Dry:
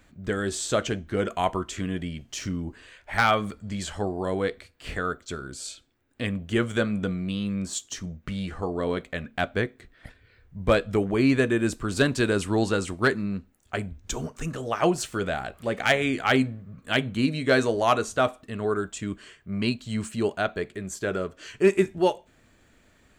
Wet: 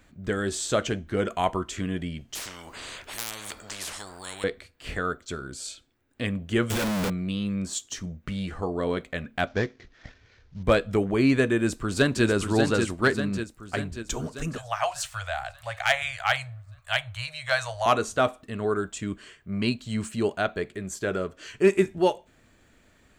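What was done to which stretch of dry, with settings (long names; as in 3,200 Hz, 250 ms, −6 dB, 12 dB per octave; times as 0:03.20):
0:02.35–0:04.44: every bin compressed towards the loudest bin 10 to 1
0:06.70–0:07.10: sign of each sample alone
0:09.47–0:10.63: variable-slope delta modulation 32 kbit/s
0:11.57–0:12.25: delay throw 590 ms, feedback 60%, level −5.5 dB
0:14.58–0:17.86: elliptic band-stop filter 110–670 Hz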